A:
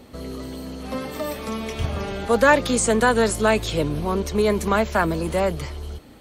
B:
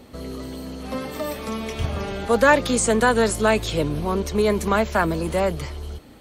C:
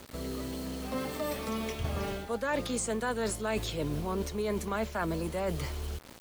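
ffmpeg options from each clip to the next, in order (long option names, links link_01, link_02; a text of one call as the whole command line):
ffmpeg -i in.wav -af anull out.wav
ffmpeg -i in.wav -af "acrusher=bits=6:mix=0:aa=0.000001,areverse,acompressor=threshold=-25dB:ratio=6,areverse,volume=-4dB" out.wav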